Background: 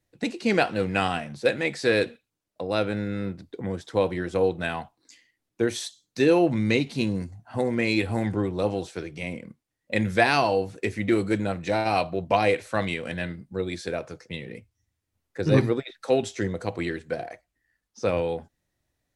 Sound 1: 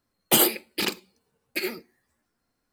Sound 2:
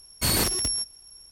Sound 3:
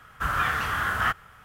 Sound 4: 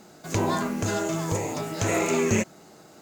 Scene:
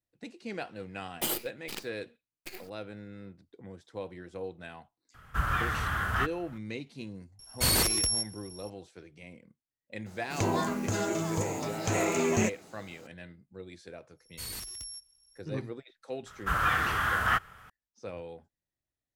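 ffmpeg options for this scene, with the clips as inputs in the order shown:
-filter_complex "[3:a]asplit=2[s0][s1];[2:a]asplit=2[s2][s3];[0:a]volume=0.158[s4];[1:a]acrusher=bits=4:dc=4:mix=0:aa=0.000001[s5];[s0]lowshelf=f=200:g=9.5[s6];[s2]equalizer=f=250:w=1.5:g=-5[s7];[s3]equalizer=f=370:t=o:w=3:g=-12.5[s8];[s5]atrim=end=2.72,asetpts=PTS-STARTPTS,volume=0.224,afade=t=in:d=0.004:c=hsin,afade=t=out:st=2.716:d=0.004:c=hsin,adelay=900[s9];[s6]atrim=end=1.44,asetpts=PTS-STARTPTS,volume=0.531,afade=t=in:d=0.004:c=hsin,afade=t=out:st=1.436:d=0.004:c=hsin,adelay=5140[s10];[s7]atrim=end=1.31,asetpts=PTS-STARTPTS,volume=0.841,afade=t=in:d=0.004:c=hsin,afade=t=out:st=1.306:d=0.004:c=hsin,adelay=7390[s11];[4:a]atrim=end=3.01,asetpts=PTS-STARTPTS,volume=0.631,afade=t=in:d=0.004:c=hsin,afade=t=out:st=3.006:d=0.004:c=hsin,adelay=10060[s12];[s8]atrim=end=1.31,asetpts=PTS-STARTPTS,volume=0.178,afade=t=in:d=0.1,afade=t=out:st=1.21:d=0.1,adelay=14160[s13];[s1]atrim=end=1.44,asetpts=PTS-STARTPTS,volume=0.841,afade=t=in:d=0.004:c=hsin,afade=t=out:st=1.436:d=0.004:c=hsin,adelay=16260[s14];[s4][s9][s10][s11][s12][s13][s14]amix=inputs=7:normalize=0"

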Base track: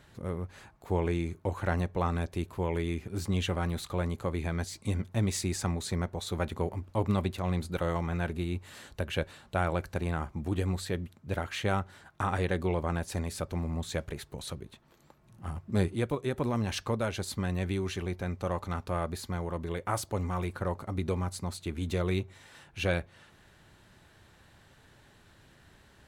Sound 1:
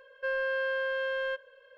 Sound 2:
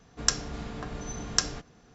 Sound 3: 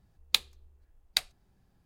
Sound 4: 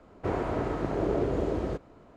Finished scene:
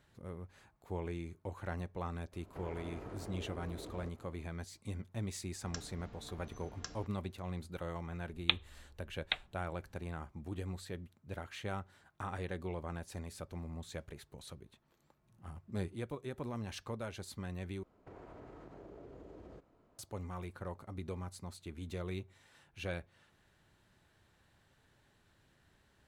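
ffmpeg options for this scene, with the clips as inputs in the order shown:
-filter_complex "[4:a]asplit=2[s0][s1];[0:a]volume=0.282[s2];[s0]acompressor=threshold=0.0178:ratio=6:attack=3.2:release=140:knee=1:detection=peak[s3];[2:a]highshelf=f=6500:g=-11.5[s4];[3:a]aresample=8000,aresample=44100[s5];[s1]acompressor=threshold=0.02:ratio=6:attack=3.2:release=140:knee=1:detection=peak[s6];[s2]asplit=2[s7][s8];[s7]atrim=end=17.834[s9];[s6]atrim=end=2.16,asetpts=PTS-STARTPTS,volume=0.178[s10];[s8]atrim=start=19.986[s11];[s3]atrim=end=2.16,asetpts=PTS-STARTPTS,volume=0.355,afade=t=in:d=0.004:c=hsin,afade=t=out:st=2.156:d=0.004:c=hsin,adelay=2320[s12];[s4]atrim=end=1.94,asetpts=PTS-STARTPTS,volume=0.15,afade=t=in:d=0.004:c=hsin,afade=t=out:st=1.936:d=0.004:c=hsin,adelay=5460[s13];[s5]atrim=end=1.85,asetpts=PTS-STARTPTS,volume=0.944,afade=t=in:d=0.004:c=hsin,afade=t=out:st=1.846:d=0.004:c=hsin,adelay=8150[s14];[s9][s10]acrossfade=d=0.004:c1=hsin:c2=hsin[s15];[s15][s11]acrossfade=d=0.004:c1=hsin:c2=hsin[s16];[s16][s12][s13][s14]amix=inputs=4:normalize=0"

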